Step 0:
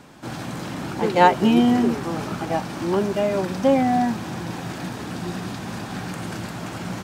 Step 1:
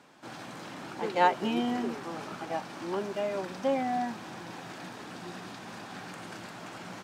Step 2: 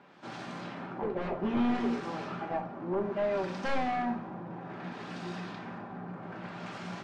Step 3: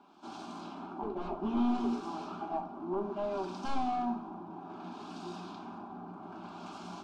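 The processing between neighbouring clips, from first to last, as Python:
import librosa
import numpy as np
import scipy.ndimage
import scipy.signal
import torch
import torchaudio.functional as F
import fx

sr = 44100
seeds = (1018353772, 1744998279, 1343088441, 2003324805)

y1 = fx.highpass(x, sr, hz=440.0, slope=6)
y1 = fx.high_shelf(y1, sr, hz=9200.0, db=-9.0)
y1 = F.gain(torch.from_numpy(y1), -7.5).numpy()
y2 = 10.0 ** (-26.5 / 20.0) * (np.abs((y1 / 10.0 ** (-26.5 / 20.0) + 3.0) % 4.0 - 2.0) - 1.0)
y2 = fx.filter_lfo_lowpass(y2, sr, shape='sine', hz=0.62, low_hz=970.0, high_hz=5800.0, q=0.7)
y2 = fx.room_shoebox(y2, sr, seeds[0], volume_m3=450.0, walls='furnished', distance_m=1.2)
y3 = fx.fixed_phaser(y2, sr, hz=510.0, stages=6)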